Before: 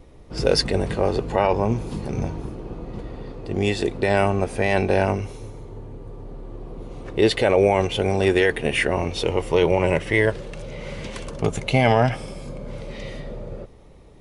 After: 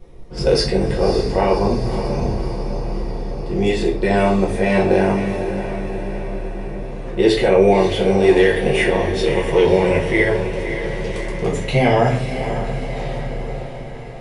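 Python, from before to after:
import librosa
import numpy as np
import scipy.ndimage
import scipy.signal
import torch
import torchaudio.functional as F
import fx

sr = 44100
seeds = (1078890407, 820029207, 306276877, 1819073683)

p1 = x + fx.echo_diffused(x, sr, ms=567, feedback_pct=61, wet_db=-9.0, dry=0)
p2 = fx.room_shoebox(p1, sr, seeds[0], volume_m3=38.0, walls='mixed', distance_m=0.96)
y = p2 * 10.0 ** (-4.0 / 20.0)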